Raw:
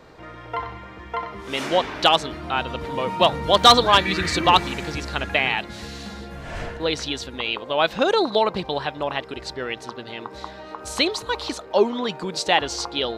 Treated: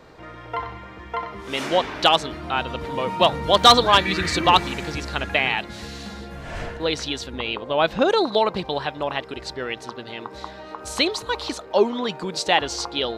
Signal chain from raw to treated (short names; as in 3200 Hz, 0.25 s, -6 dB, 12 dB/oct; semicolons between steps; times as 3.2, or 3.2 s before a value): 7.3–8.1 tilt -1.5 dB/oct